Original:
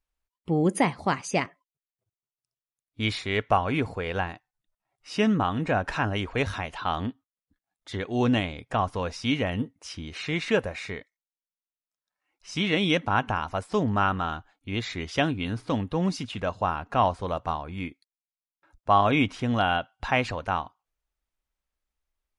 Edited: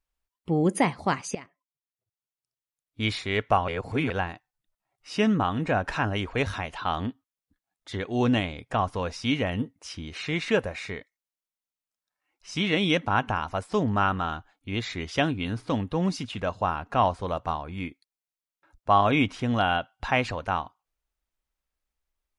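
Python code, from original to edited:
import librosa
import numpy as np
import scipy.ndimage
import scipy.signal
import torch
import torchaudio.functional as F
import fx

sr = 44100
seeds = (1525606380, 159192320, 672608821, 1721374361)

y = fx.edit(x, sr, fx.fade_in_from(start_s=1.35, length_s=1.68, floor_db=-18.5),
    fx.reverse_span(start_s=3.68, length_s=0.42), tone=tone)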